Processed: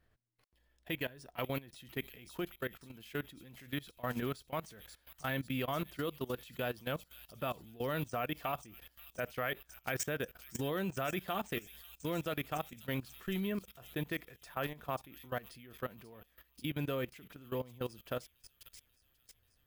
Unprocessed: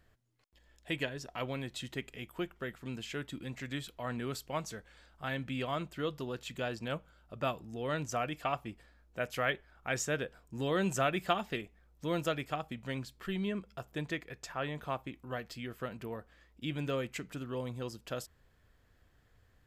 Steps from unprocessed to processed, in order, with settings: careless resampling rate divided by 3×, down filtered, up hold; feedback echo behind a high-pass 537 ms, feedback 65%, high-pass 5 kHz, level -4 dB; level held to a coarse grid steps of 19 dB; trim +3 dB

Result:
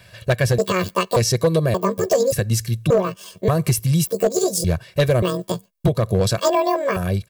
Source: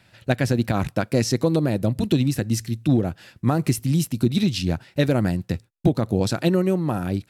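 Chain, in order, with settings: pitch shift switched off and on +10.5 st, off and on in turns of 580 ms; treble shelf 11 kHz +7 dB; comb 1.8 ms, depth 87%; in parallel at +0.5 dB: compression, threshold -32 dBFS, peak gain reduction 18.5 dB; on the sum: overload inside the chain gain 10 dB

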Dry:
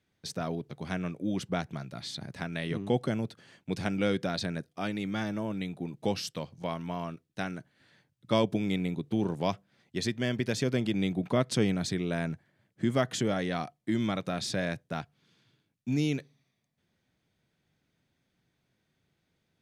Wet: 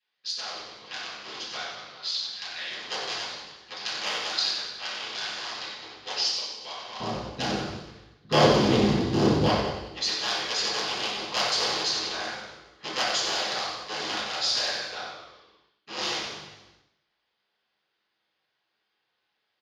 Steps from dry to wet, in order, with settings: cycle switcher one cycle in 3, inverted; high-pass 1.5 kHz 12 dB/octave, from 7.00 s 220 Hz, from 9.49 s 1.1 kHz; level-controlled noise filter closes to 2.8 kHz, open at -32 dBFS; peaking EQ 4.8 kHz +10 dB 0.55 oct; frequency-shifting echo 92 ms, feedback 56%, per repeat -51 Hz, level -6 dB; reverberation RT60 0.60 s, pre-delay 3 ms, DRR -10 dB; trim -9 dB

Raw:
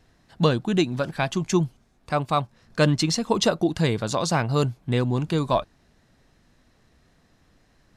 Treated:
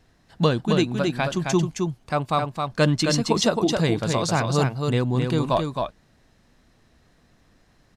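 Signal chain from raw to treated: delay 266 ms -4.5 dB

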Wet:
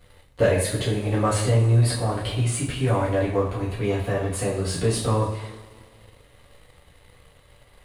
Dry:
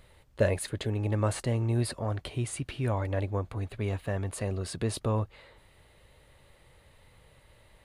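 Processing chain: two-slope reverb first 0.48 s, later 2.3 s, from -18 dB, DRR -7.5 dB; waveshaping leveller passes 1; trim -3 dB

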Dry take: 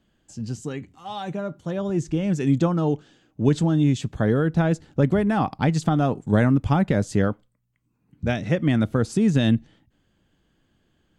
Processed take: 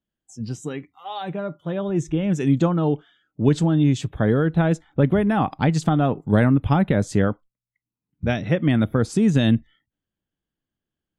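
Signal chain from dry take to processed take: spectral noise reduction 22 dB; trim +1.5 dB

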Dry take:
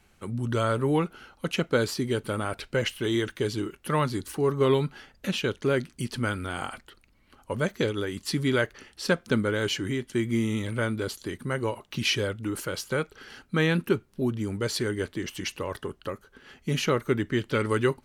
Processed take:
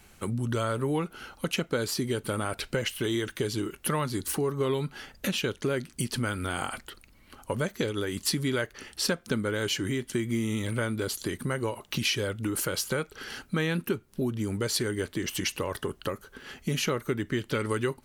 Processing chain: compression 3:1, threshold -34 dBFS, peak gain reduction 12.5 dB; treble shelf 7.2 kHz +8.5 dB; trim +5.5 dB

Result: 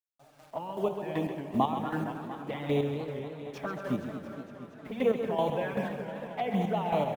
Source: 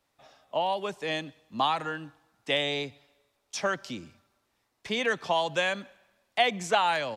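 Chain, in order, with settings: low-pass 1.5 kHz 12 dB/octave; gate with hold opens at -55 dBFS; high-pass 46 Hz 6 dB/octave; bass shelf 370 Hz +8 dB; in parallel at -1 dB: compression 6:1, threshold -38 dBFS, peak gain reduction 18.5 dB; on the sum: bit crusher 9-bit; Schroeder reverb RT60 2.6 s, combs from 31 ms, DRR 6.5 dB; square tremolo 2.6 Hz, depth 60%, duty 30%; touch-sensitive flanger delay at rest 7.8 ms, full sweep at -25.5 dBFS; delay 133 ms -9.5 dB; modulated delay 232 ms, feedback 75%, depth 196 cents, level -11 dB; trim +1 dB

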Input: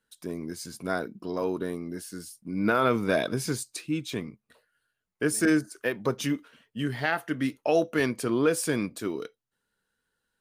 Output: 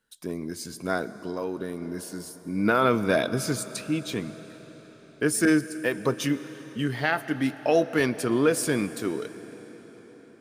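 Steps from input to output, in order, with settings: reverberation RT60 5.3 s, pre-delay 75 ms, DRR 14 dB; 1.09–1.82 s: compression 2:1, threshold -32 dBFS, peak gain reduction 5 dB; trim +2 dB

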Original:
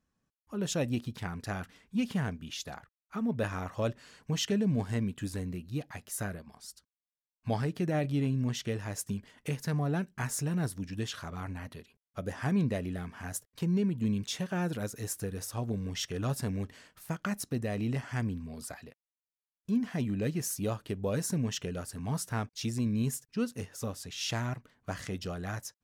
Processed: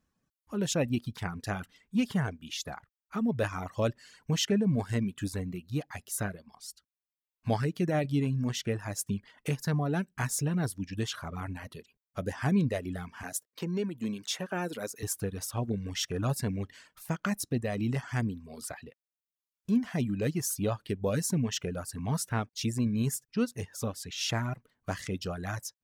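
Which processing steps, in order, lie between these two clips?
reverb removal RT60 0.74 s; 13.23–15.03 s: high-pass 260 Hz 12 dB/octave; trim +3 dB

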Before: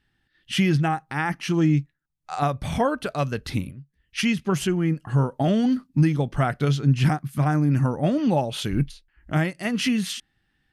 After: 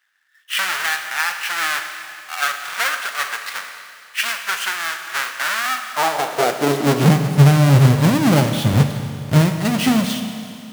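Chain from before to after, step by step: square wave that keeps the level; high-pass sweep 1.5 kHz -> 110 Hz, 5.62–7.43 s; Schroeder reverb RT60 2.5 s, combs from 28 ms, DRR 6 dB

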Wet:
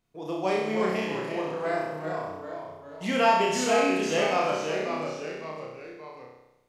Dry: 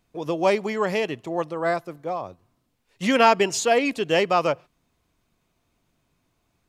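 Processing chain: ever faster or slower copies 289 ms, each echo -1 st, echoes 3, each echo -6 dB; flutter echo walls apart 5.5 m, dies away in 0.94 s; trim -9 dB

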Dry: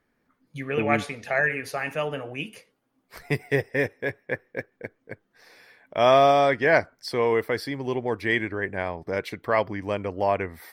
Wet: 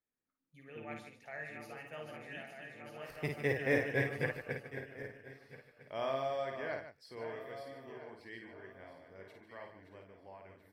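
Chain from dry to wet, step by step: backward echo that repeats 637 ms, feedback 62%, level -8 dB; Doppler pass-by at 3.98 s, 8 m/s, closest 3.2 m; loudspeakers at several distances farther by 18 m -5 dB, 51 m -11 dB; trim -6 dB

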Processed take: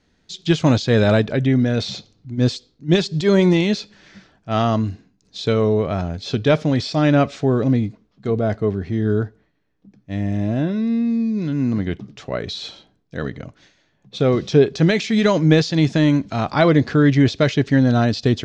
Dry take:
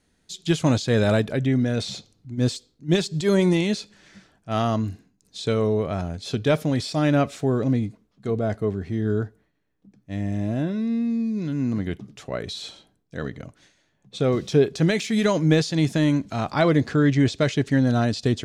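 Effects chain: low-pass 6 kHz 24 dB/octave; trim +4.5 dB

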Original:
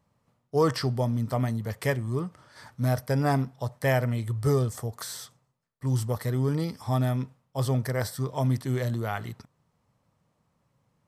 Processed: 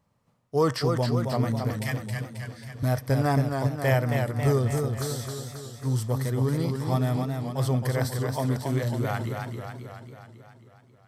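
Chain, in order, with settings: 1.75–2.83 s: inverse Chebyshev band-stop 240–850 Hz, stop band 50 dB; modulated delay 271 ms, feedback 60%, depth 97 cents, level -5 dB

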